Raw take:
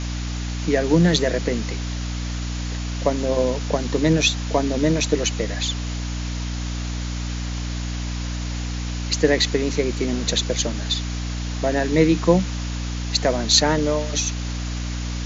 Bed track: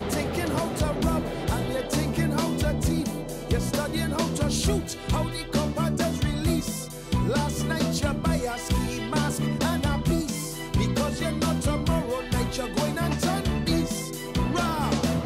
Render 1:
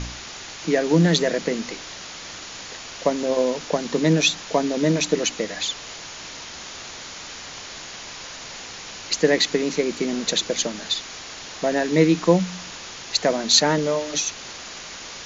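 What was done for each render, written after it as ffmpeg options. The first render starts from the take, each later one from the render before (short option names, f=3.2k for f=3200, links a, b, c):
-af "bandreject=f=60:t=h:w=4,bandreject=f=120:t=h:w=4,bandreject=f=180:t=h:w=4,bandreject=f=240:t=h:w=4,bandreject=f=300:t=h:w=4"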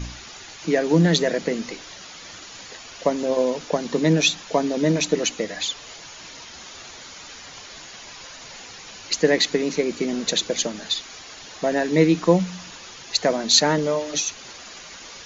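-af "afftdn=nr=8:nf=-38"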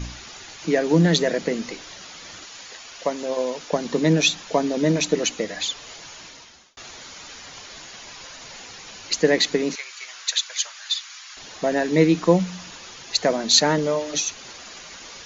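-filter_complex "[0:a]asettb=1/sr,asplit=3[a][b][c];[a]atrim=end=2.454[d];[b]atrim=start=2.45:end=3.73,asetpts=PTS-STARTPTS,afade=t=in:d=0.004:c=qsin,afade=t=out:st=1.276:d=0.004:c=qsin,lowshelf=f=430:g=-9[e];[c]atrim=start=3.726[f];[d][e]acrossfade=d=0.004:c1=hsin:c2=qsin[g];[g][f]acrossfade=d=0.004:c1=qsin:c2=hsin,asettb=1/sr,asplit=3[h][i][j];[h]atrim=end=9.754[k];[i]atrim=start=9.75:end=11.37,asetpts=PTS-STARTPTS,afade=t=in:d=0.004:c=qsin,afade=t=out:st=1.616:d=0.004:c=qsin,highpass=f=1.1k:w=0.5412,highpass=f=1.1k:w=1.3066[l];[j]atrim=start=11.366[m];[k][l]acrossfade=d=0.004:c1=hsin:c2=qsin[n];[n][m]acrossfade=d=0.004:c1=qsin:c2=hsin,asplit=2[o][p];[o]atrim=end=6.77,asetpts=PTS-STARTPTS,afade=t=out:st=6.15:d=0.62[q];[p]atrim=start=6.77,asetpts=PTS-STARTPTS,afade=t=in:d=0.004:c=hsin[r];[q][r]concat=n=2:v=0:a=1"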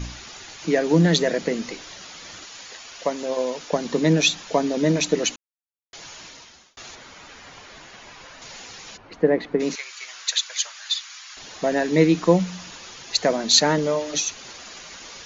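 -filter_complex "[0:a]asettb=1/sr,asplit=3[a][b][c];[a]atrim=end=6.954[d];[b]atrim=start=6.95:end=8.42,asetpts=PTS-STARTPTS,afade=t=in:d=0.004:c=qsin,afade=t=out:st=1.466:d=0.004:c=qsin,acrossover=split=2800[e][f];[f]acompressor=threshold=-49dB:ratio=4:attack=1:release=60[g];[e][g]amix=inputs=2:normalize=0[h];[c]atrim=start=8.416[i];[d][h]acrossfade=d=0.004:c1=hsin:c2=qsin[j];[j][i]acrossfade=d=0.004:c1=qsin:c2=hsin,asplit=3[k][l][m];[k]afade=t=out:st=8.96:d=0.02[n];[l]lowpass=1.2k,afade=t=in:st=8.96:d=0.02,afade=t=out:st=9.59:d=0.02[o];[m]afade=t=in:st=9.59:d=0.02[p];[n][o][p]amix=inputs=3:normalize=0,asplit=3[q][r][s];[q]atrim=end=5.36,asetpts=PTS-STARTPTS,afade=t=out:st=5.356:d=0.004:c=hsin[t];[r]atrim=start=5.36:end=5.93,asetpts=PTS-STARTPTS,volume=0[u];[s]atrim=start=5.93,asetpts=PTS-STARTPTS,afade=t=in:d=0.004:c=hsin[v];[t][u][v]concat=n=3:v=0:a=1"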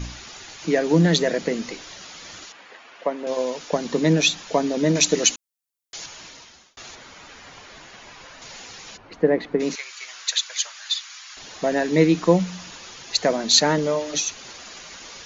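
-filter_complex "[0:a]asettb=1/sr,asplit=3[a][b][c];[a]atrim=end=2.524[d];[b]atrim=start=2.52:end=3.27,asetpts=PTS-STARTPTS,afade=t=in:d=0.004:c=qsin,afade=t=out:st=0.746:d=0.004:c=qsin,acrossover=split=170 2800:gain=0.1 1 0.1[e][f][g];[e][f][g]amix=inputs=3:normalize=0[h];[c]atrim=start=3.266[i];[d][h]acrossfade=d=0.004:c1=hsin:c2=qsin[j];[j][i]acrossfade=d=0.004:c1=qsin:c2=hsin,asettb=1/sr,asplit=3[k][l][m];[k]atrim=end=4.954[n];[l]atrim=start=4.95:end=6.06,asetpts=PTS-STARTPTS,afade=t=in:d=0.004:c=qsin,afade=t=out:st=1.106:d=0.004:c=qsin,highshelf=f=4k:g=11[o];[m]atrim=start=6.056[p];[n][o]acrossfade=d=0.004:c1=hsin:c2=qsin[q];[q][p]acrossfade=d=0.004:c1=qsin:c2=hsin"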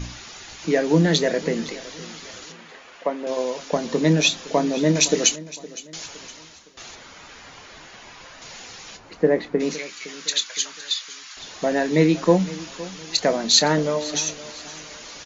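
-filter_complex "[0:a]asplit=2[a][b];[b]adelay=26,volume=-12dB[c];[a][c]amix=inputs=2:normalize=0,aecho=1:1:513|1026|1539:0.126|0.0504|0.0201"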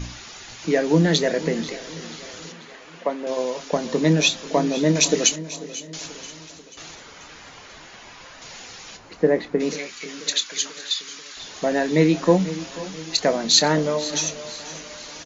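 -af "aecho=1:1:488|976|1464|1952|2440:0.119|0.0654|0.036|0.0198|0.0109"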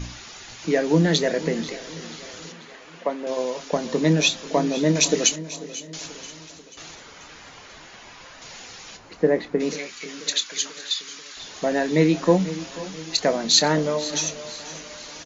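-af "volume=-1dB"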